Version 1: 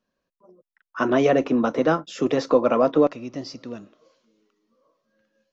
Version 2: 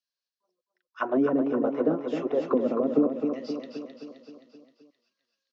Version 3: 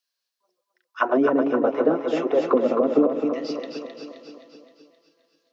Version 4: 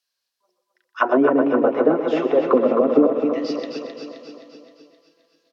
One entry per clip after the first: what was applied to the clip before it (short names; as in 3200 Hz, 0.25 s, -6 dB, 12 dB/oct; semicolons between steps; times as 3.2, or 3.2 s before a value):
auto-wah 260–4700 Hz, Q 2.3, down, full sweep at -14.5 dBFS; on a send: feedback echo 0.262 s, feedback 57%, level -6 dB
regenerating reverse delay 0.134 s, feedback 73%, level -13.5 dB; HPF 470 Hz 6 dB/oct; gain +8.5 dB
treble ducked by the level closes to 2800 Hz, closed at -16 dBFS; echo 0.124 s -11.5 dB; gain +3 dB